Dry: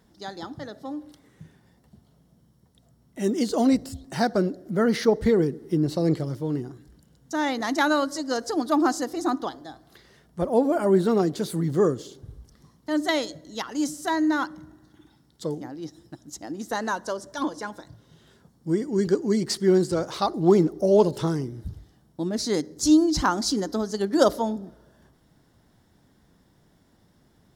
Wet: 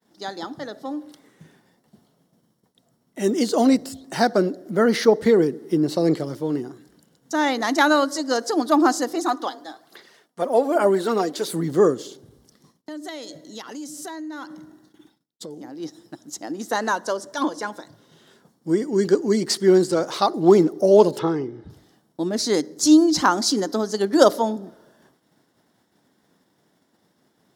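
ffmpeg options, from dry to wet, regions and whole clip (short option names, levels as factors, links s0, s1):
-filter_complex "[0:a]asettb=1/sr,asplit=3[s0][s1][s2];[s0]atrim=end=9.154[s3];[s1]atrim=start=9.15:end=11.48,asetpts=PTS-STARTPTS,afade=t=in:d=0.004:c=qsin,afade=t=out:st=2.326:d=0.004:c=qsin,highpass=f=410:p=1,aphaser=in_gain=1:out_gain=1:delay=4.3:decay=0.45:speed=1.2:type=sinusoidal[s4];[s2]atrim=start=11.476[s5];[s3][s4]acrossfade=d=0.004:c1=hsin:c2=qsin[s6];[s6][s5]acrossfade=d=0.004:c1=qsin:c2=hsin,asettb=1/sr,asplit=3[s7][s8][s9];[s7]atrim=end=12.174[s10];[s8]atrim=start=12.17:end=15.8,asetpts=PTS-STARTPTS,afade=t=in:d=0.004:c=qsin,afade=t=out:st=3.626:d=0.004:c=qsin,agate=range=0.0224:threshold=0.00158:ratio=3:release=100:detection=peak,equalizer=f=1200:w=0.67:g=-4.5,acompressor=threshold=0.0158:ratio=6:attack=3.2:release=140:knee=1:detection=peak[s11];[s9]atrim=start=15.796[s12];[s10][s11]acrossfade=d=0.004:c1=hsin:c2=qsin[s13];[s13][s12]acrossfade=d=0.004:c1=qsin:c2=hsin,asettb=1/sr,asplit=3[s14][s15][s16];[s14]atrim=end=21.194[s17];[s15]atrim=start=21.19:end=21.7,asetpts=PTS-STARTPTS,afade=t=in:d=0.004:c=qsin,afade=t=out:st=0.506:d=0.004:c=qsin,lowpass=2700,aecho=1:1:2.4:0.37,atrim=end_sample=22491[s18];[s16]atrim=start=21.696[s19];[s17][s18]acrossfade=d=0.004:c1=hsin:c2=qsin[s20];[s20][s19]acrossfade=d=0.004:c1=qsin:c2=hsin,agate=range=0.0224:threshold=0.00178:ratio=3:detection=peak,highpass=230,volume=1.78"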